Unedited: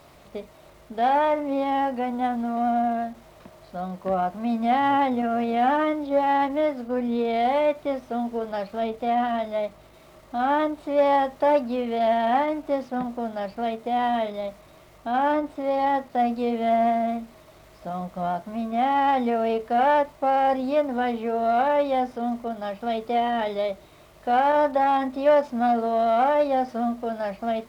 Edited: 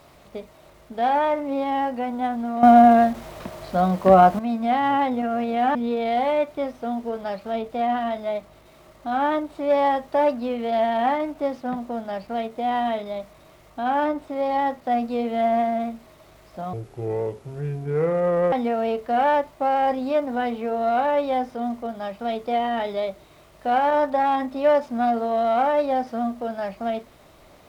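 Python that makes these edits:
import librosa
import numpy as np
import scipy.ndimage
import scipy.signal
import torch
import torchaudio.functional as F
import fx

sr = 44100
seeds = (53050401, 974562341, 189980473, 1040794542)

y = fx.edit(x, sr, fx.clip_gain(start_s=2.63, length_s=1.76, db=11.5),
    fx.cut(start_s=5.75, length_s=1.28),
    fx.speed_span(start_s=18.01, length_s=1.13, speed=0.63), tone=tone)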